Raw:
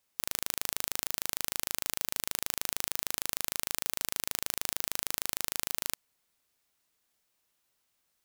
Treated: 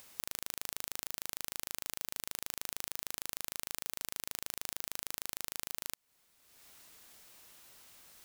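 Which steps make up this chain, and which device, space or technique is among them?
upward and downward compression (upward compressor, threshold -51 dBFS; compression 6:1, threshold -39 dBFS, peak gain reduction 13 dB); trim +6 dB

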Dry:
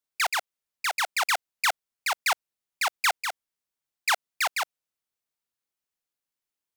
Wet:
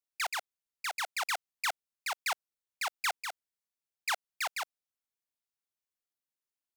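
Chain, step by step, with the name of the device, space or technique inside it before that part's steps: exciter from parts (in parallel at -14 dB: high-pass 2.7 kHz 12 dB/octave + saturation -32.5 dBFS, distortion -4 dB); on the sum: trim -8 dB

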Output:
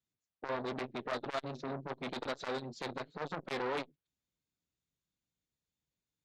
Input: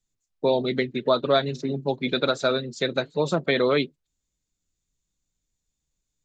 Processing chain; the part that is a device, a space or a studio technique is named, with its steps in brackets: valve radio (band-pass 94–4100 Hz; valve stage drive 21 dB, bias 0.25; transformer saturation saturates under 1.1 kHz); trim -5 dB

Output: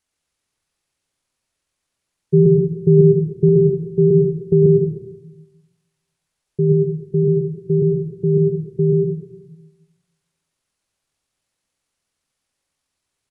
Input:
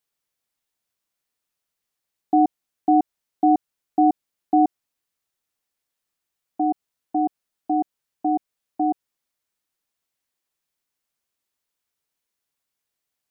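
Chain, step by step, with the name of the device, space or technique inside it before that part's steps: 3.48–4.65 s: dynamic bell 220 Hz, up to -7 dB, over -36 dBFS, Q 1.8; monster voice (pitch shift -11 st; bass shelf 110 Hz +7 dB; reverberation RT60 0.90 s, pre-delay 94 ms, DRR 2 dB); trim +3.5 dB

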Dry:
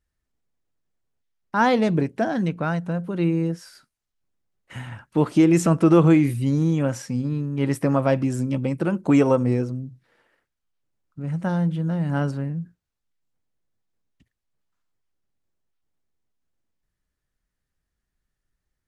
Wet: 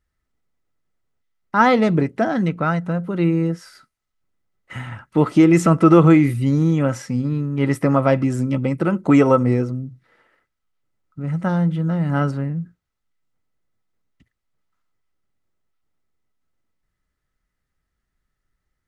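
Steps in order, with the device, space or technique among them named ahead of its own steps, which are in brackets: inside a helmet (treble shelf 5 kHz -5 dB; small resonant body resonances 1.3/2 kHz, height 11 dB, ringing for 45 ms); trim +3.5 dB

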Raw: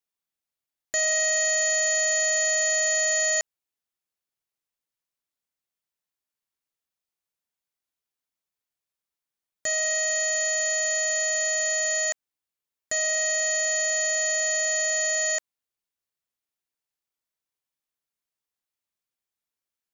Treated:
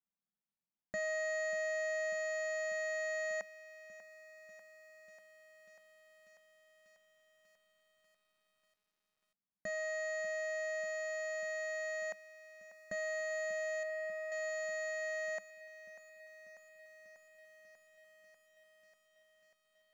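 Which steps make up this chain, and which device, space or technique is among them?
graphic EQ with 31 bands 100 Hz -8 dB, 200 Hz +11 dB, 400 Hz -8 dB, 3.15 kHz -11 dB; 13.83–14.32 s: low-pass 1.3 kHz 6 dB/octave; phone in a pocket (low-pass 3.3 kHz 12 dB/octave; peaking EQ 180 Hz +6 dB 0.93 oct; treble shelf 2 kHz -9 dB); bit-crushed delay 592 ms, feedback 80%, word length 10-bit, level -14 dB; trim -6 dB

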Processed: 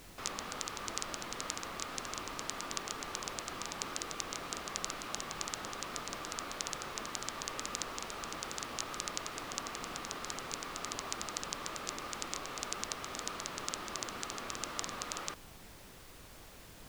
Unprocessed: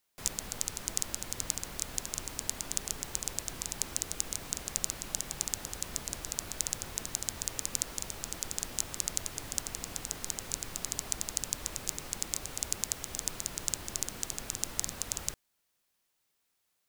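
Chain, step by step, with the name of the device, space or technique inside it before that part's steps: horn gramophone (band-pass 240–4100 Hz; peaking EQ 1.2 kHz +10 dB 0.28 oct; wow and flutter; pink noise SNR 11 dB); trim +2.5 dB

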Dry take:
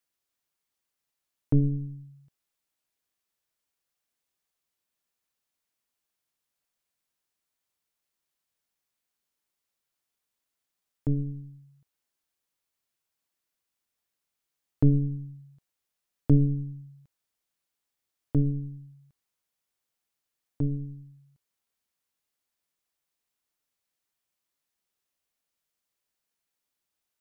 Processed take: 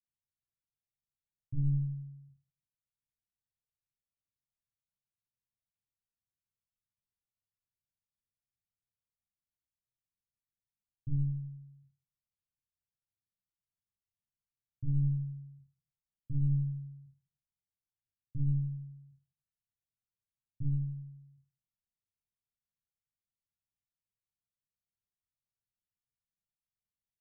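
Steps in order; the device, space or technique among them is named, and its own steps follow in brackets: club heard from the street (peak limiter -22.5 dBFS, peak gain reduction 11 dB; low-pass 170 Hz 24 dB/octave; reverberation RT60 0.50 s, pre-delay 9 ms, DRR -4.5 dB); trim -5.5 dB

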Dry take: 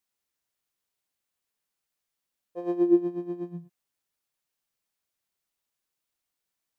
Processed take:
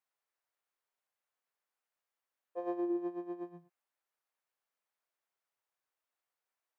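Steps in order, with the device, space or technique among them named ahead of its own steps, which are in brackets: DJ mixer with the lows and highs turned down (three-band isolator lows -21 dB, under 430 Hz, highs -12 dB, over 2.1 kHz; peak limiter -28.5 dBFS, peak gain reduction 9 dB); trim +1 dB

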